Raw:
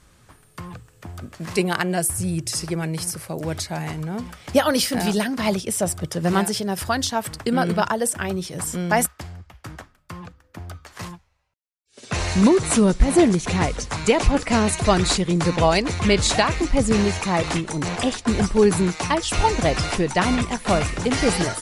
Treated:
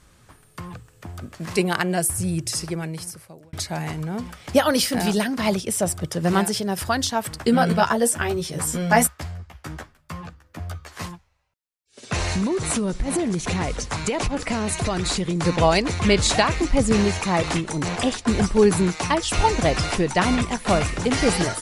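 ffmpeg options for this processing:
-filter_complex "[0:a]asettb=1/sr,asplit=3[s0][s1][s2];[s0]atrim=end=7.394[s3];[s1]atrim=start=7.39:end=11.06,asetpts=PTS-STARTPTS,afade=t=in:d=0.004:c=qsin,afade=t=out:st=3.666:d=0.004:c=qsin,asplit=2[s4][s5];[s5]adelay=13,volume=0.794[s6];[s4][s6]amix=inputs=2:normalize=0,atrim=end_sample=161847[s7];[s2]atrim=start=11.056[s8];[s3][s7]acrossfade=d=0.004:c1=hsin:c2=qsin[s9];[s9][s8]acrossfade=d=0.004:c1=qsin:c2=hsin,asettb=1/sr,asplit=3[s10][s11][s12];[s10]atrim=end=12.184[s13];[s11]atrim=start=12.18:end=15.45,asetpts=PTS-STARTPTS,afade=t=in:d=0.004:c=qsin,afade=t=out:st=3.266:d=0.004:c=qsin,acompressor=threshold=0.112:ratio=10:attack=3.2:release=140:knee=1:detection=peak[s14];[s12]atrim=start=15.446[s15];[s13][s14]acrossfade=d=0.004:c1=hsin:c2=qsin[s16];[s16][s15]acrossfade=d=0.004:c1=qsin:c2=hsin,asplit=2[s17][s18];[s17]atrim=end=3.53,asetpts=PTS-STARTPTS,afade=t=out:st=2.5:d=1.03[s19];[s18]atrim=start=3.53,asetpts=PTS-STARTPTS,afade=t=in:d=0.004:c=hsin[s20];[s19][s20]concat=n=2:v=0:a=1"

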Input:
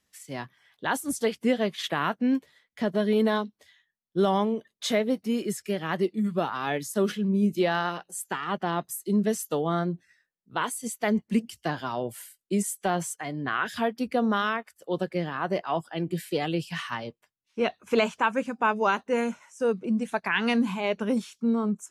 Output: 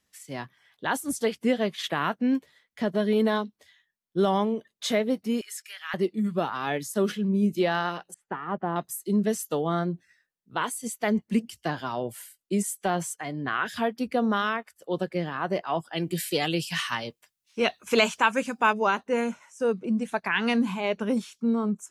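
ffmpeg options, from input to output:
-filter_complex "[0:a]asettb=1/sr,asplit=3[s0][s1][s2];[s0]atrim=end=5.414[s3];[s1]atrim=start=5.41:end=5.94,asetpts=PTS-STARTPTS,afade=t=in:d=0.004:c=qsin,afade=t=out:st=0.526:d=0.004:c=qsin,highpass=f=1300:w=0.5412,highpass=f=1300:w=1.3066[s4];[s2]atrim=start=5.936[s5];[s3][s4]acrossfade=d=0.004:c1=hsin:c2=qsin[s6];[s6][s5]acrossfade=d=0.004:c1=qsin:c2=hsin,asettb=1/sr,asplit=3[s7][s8][s9];[s7]atrim=end=8.144[s10];[s8]atrim=start=8.14:end=8.76,asetpts=PTS-STARTPTS,afade=t=in:d=0.004:c=qsin,afade=t=out:st=0.616:d=0.004:c=qsin,lowpass=1300[s11];[s9]atrim=start=8.756[s12];[s10][s11]acrossfade=d=0.004:c1=hsin:c2=qsin[s13];[s13][s12]acrossfade=d=0.004:c1=qsin:c2=hsin,asettb=1/sr,asplit=3[s14][s15][s16];[s14]atrim=end=15.934[s17];[s15]atrim=start=15.93:end=18.73,asetpts=PTS-STARTPTS,afade=t=in:d=0.004:c=qsin,afade=t=out:st=2.796:d=0.004:c=qsin,highshelf=f=2300:g=11[s18];[s16]atrim=start=18.726[s19];[s17][s18]acrossfade=d=0.004:c1=hsin:c2=qsin[s20];[s20][s19]acrossfade=d=0.004:c1=qsin:c2=hsin"

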